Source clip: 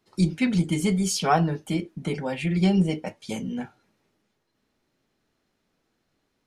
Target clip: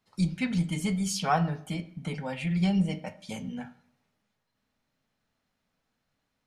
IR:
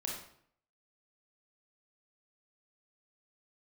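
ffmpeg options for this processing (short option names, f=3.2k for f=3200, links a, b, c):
-filter_complex "[0:a]equalizer=f=360:t=o:w=0.54:g=-13,asplit=2[a][b];[1:a]atrim=start_sample=2205,lowpass=4.4k[c];[b][c]afir=irnorm=-1:irlink=0,volume=-11.5dB[d];[a][d]amix=inputs=2:normalize=0,volume=-5dB"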